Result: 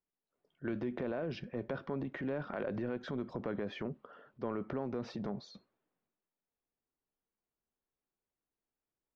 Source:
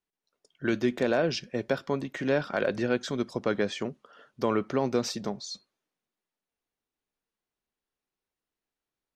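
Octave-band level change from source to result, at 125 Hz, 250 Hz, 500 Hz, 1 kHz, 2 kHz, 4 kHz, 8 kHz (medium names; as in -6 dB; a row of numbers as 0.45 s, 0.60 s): -6.5 dB, -8.5 dB, -11.0 dB, -11.0 dB, -13.0 dB, -16.0 dB, under -25 dB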